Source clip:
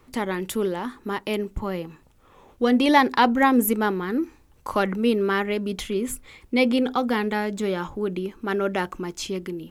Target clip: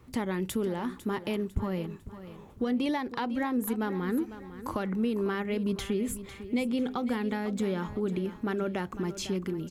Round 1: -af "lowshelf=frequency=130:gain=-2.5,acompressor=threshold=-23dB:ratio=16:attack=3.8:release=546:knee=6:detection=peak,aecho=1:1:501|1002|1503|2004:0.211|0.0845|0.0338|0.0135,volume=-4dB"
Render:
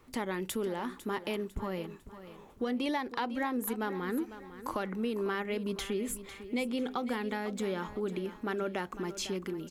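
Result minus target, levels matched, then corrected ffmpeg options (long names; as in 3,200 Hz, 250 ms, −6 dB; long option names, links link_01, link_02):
125 Hz band −4.0 dB
-af "lowshelf=frequency=130:gain=-2.5,acompressor=threshold=-23dB:ratio=16:attack=3.8:release=546:knee=6:detection=peak,equalizer=frequency=100:width=0.58:gain=12,aecho=1:1:501|1002|1503|2004:0.211|0.0845|0.0338|0.0135,volume=-4dB"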